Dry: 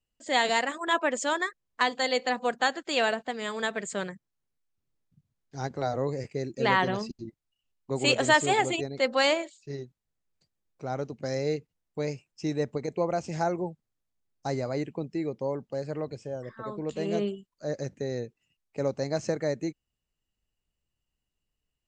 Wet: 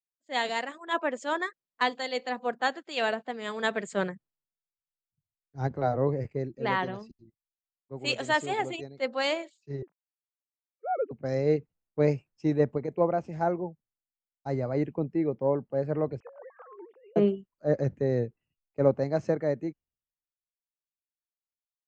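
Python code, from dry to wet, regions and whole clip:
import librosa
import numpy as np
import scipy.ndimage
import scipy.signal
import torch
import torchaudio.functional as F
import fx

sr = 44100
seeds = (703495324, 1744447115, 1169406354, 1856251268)

y = fx.chain(x, sr, fx.sine_speech(),
    fx.highpass(hz=300.0, slope=12),
    fx.notch(hz=1000.0, q=28.0), at=(9.82, 11.11))
y = fx.chain(y, sr, fx.sine_speech(),
    fx.bandpass_edges(low_hz=640.0, high_hz=2200.0),
    fx.over_compress(threshold_db=-43.0, ratio=-1.0), at=(16.2, 17.16))
y = fx.rider(y, sr, range_db=5, speed_s=0.5)
y = fx.lowpass(y, sr, hz=1800.0, slope=6)
y = fx.band_widen(y, sr, depth_pct=100)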